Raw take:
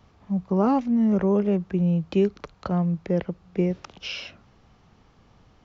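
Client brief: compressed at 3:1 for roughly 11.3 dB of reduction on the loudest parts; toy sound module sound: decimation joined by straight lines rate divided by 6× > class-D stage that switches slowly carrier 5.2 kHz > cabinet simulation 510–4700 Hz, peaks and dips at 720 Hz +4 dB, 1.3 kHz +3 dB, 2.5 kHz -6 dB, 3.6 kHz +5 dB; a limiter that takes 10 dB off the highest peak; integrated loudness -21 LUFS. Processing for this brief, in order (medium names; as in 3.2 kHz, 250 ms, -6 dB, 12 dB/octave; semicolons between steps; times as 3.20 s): compression 3:1, threshold -33 dBFS; peak limiter -29 dBFS; decimation joined by straight lines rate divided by 6×; class-D stage that switches slowly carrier 5.2 kHz; cabinet simulation 510–4700 Hz, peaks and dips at 720 Hz +4 dB, 1.3 kHz +3 dB, 2.5 kHz -6 dB, 3.6 kHz +5 dB; trim +26.5 dB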